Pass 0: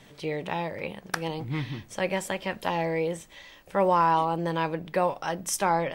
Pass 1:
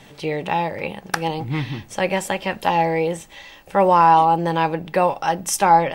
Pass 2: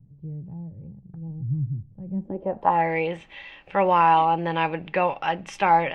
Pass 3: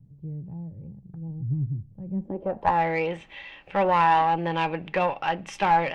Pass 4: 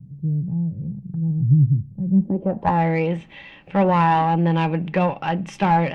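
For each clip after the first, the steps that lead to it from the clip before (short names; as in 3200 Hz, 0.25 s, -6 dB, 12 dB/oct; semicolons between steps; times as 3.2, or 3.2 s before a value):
small resonant body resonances 820/2700 Hz, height 8 dB; gain +6.5 dB
low-pass sweep 130 Hz -> 2600 Hz, 2.06–2.94; gain -5.5 dB
one diode to ground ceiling -15 dBFS
bell 170 Hz +13.5 dB 1.9 oct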